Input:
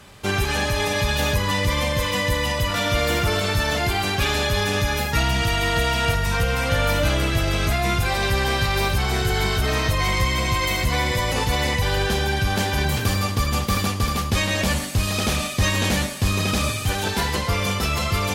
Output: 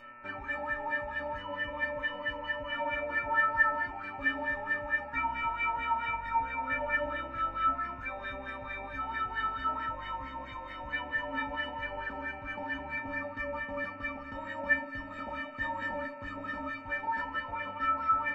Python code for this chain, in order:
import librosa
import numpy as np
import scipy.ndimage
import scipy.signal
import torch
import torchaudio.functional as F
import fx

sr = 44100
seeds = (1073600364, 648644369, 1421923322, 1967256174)

y = fx.filter_lfo_lowpass(x, sr, shape='sine', hz=4.5, low_hz=760.0, high_hz=1800.0, q=5.8)
y = fx.dmg_buzz(y, sr, base_hz=120.0, harmonics=23, level_db=-35.0, tilt_db=-1, odd_only=False)
y = fx.stiff_resonator(y, sr, f0_hz=270.0, decay_s=0.54, stiffness=0.03)
y = F.gain(torch.from_numpy(y), 2.5).numpy()